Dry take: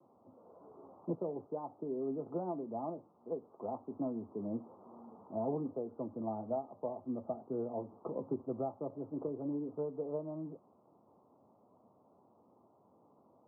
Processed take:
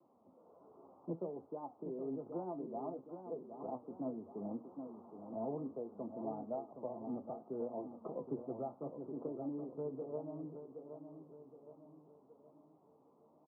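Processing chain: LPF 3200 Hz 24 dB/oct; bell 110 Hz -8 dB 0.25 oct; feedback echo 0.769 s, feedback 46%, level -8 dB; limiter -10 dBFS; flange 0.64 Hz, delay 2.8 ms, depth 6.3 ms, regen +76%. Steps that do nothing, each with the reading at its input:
LPF 3200 Hz: input band ends at 1200 Hz; limiter -10 dBFS: input peak -24.0 dBFS

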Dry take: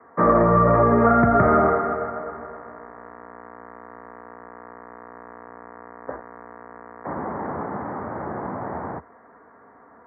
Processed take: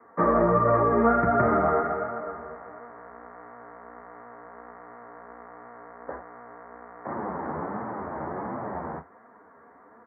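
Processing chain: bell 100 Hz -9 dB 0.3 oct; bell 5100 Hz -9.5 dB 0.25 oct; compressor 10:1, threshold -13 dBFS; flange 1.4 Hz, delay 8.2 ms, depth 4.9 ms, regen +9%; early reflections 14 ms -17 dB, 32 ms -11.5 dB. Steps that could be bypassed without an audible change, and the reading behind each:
bell 5100 Hz: input band ends at 2000 Hz

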